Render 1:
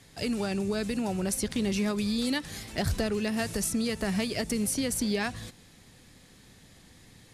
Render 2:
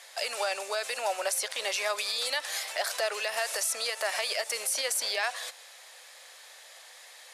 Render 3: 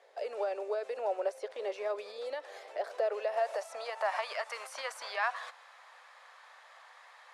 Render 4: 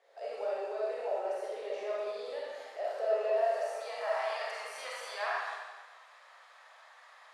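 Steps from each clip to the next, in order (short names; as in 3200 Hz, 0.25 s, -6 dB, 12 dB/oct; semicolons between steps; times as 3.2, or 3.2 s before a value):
elliptic high-pass 570 Hz, stop band 80 dB; limiter -28.5 dBFS, peak gain reduction 9.5 dB; gain +9 dB
band-pass sweep 420 Hz -> 1100 Hz, 2.86–4.37; gain +5.5 dB
digital reverb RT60 1.3 s, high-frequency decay 0.95×, pre-delay 5 ms, DRR -6.5 dB; gain -8 dB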